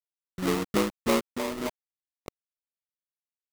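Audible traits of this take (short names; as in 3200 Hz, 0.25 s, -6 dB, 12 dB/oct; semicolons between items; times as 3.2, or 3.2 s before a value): a quantiser's noise floor 6-bit, dither none; phasing stages 6, 3 Hz, lowest notch 610–1900 Hz; aliases and images of a low sample rate 1600 Hz, jitter 20%; noise-modulated level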